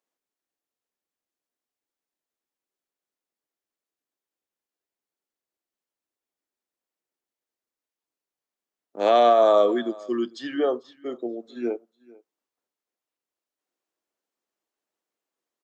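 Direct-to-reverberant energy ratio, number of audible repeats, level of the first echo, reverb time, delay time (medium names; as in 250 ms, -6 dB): no reverb, 1, -23.5 dB, no reverb, 445 ms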